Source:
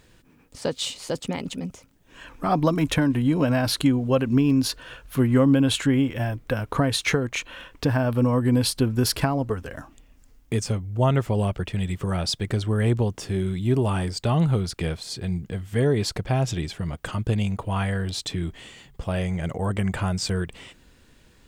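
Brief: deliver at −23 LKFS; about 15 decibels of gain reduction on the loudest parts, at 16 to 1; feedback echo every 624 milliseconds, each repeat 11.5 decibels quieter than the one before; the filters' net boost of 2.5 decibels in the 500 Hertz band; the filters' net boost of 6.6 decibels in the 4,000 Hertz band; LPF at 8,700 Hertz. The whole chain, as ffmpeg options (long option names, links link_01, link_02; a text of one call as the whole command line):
ffmpeg -i in.wav -af "lowpass=8700,equalizer=frequency=500:width_type=o:gain=3,equalizer=frequency=4000:width_type=o:gain=8,acompressor=threshold=-29dB:ratio=16,aecho=1:1:624|1248|1872:0.266|0.0718|0.0194,volume=10.5dB" out.wav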